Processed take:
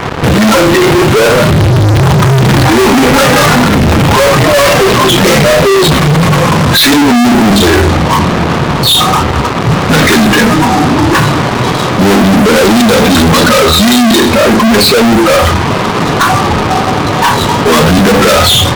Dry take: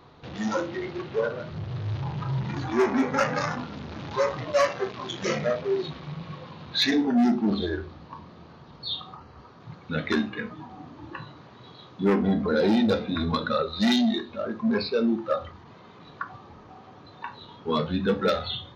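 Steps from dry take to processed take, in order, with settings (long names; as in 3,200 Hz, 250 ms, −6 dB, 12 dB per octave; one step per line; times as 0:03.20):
low-pass that shuts in the quiet parts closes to 1,800 Hz, open at −20 dBFS
fuzz pedal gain 52 dB, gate −52 dBFS
level +8 dB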